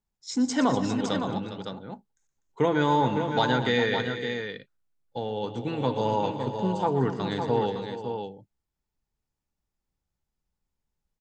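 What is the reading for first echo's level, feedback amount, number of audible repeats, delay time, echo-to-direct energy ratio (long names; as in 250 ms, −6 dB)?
−12.5 dB, repeats not evenly spaced, 4, 119 ms, −4.5 dB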